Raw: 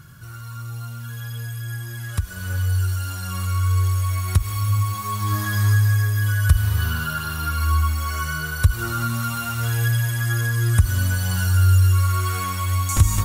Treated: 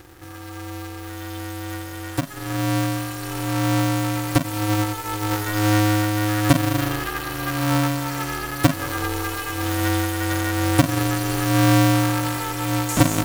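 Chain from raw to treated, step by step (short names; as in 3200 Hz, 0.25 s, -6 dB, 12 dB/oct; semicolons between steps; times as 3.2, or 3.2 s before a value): polarity switched at an audio rate 210 Hz; gain -1.5 dB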